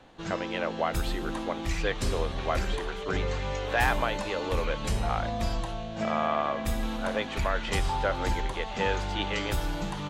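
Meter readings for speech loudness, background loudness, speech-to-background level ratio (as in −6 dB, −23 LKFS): −33.0 LKFS, −33.0 LKFS, 0.0 dB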